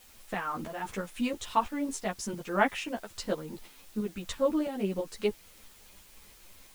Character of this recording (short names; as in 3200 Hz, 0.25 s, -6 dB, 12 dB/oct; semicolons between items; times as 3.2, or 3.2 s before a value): tremolo saw up 3 Hz, depth 60%; a quantiser's noise floor 10-bit, dither triangular; a shimmering, thickened sound